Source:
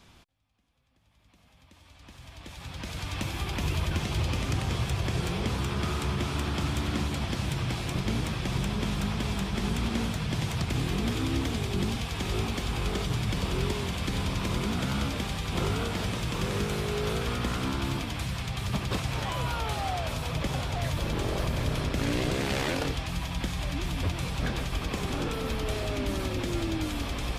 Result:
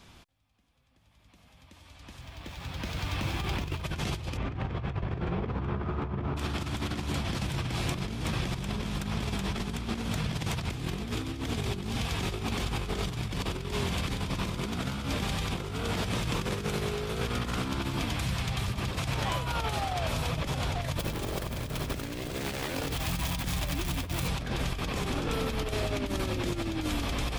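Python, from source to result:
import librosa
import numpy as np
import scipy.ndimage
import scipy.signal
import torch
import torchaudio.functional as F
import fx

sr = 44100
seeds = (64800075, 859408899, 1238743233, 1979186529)

y = fx.median_filter(x, sr, points=5, at=(2.21, 3.83))
y = fx.lowpass(y, sr, hz=fx.line((4.36, 2100.0), (6.36, 1200.0)), slope=12, at=(4.36, 6.36), fade=0.02)
y = fx.crossing_spikes(y, sr, level_db=-31.5, at=(20.99, 24.28))
y = fx.over_compress(y, sr, threshold_db=-31.0, ratio=-0.5)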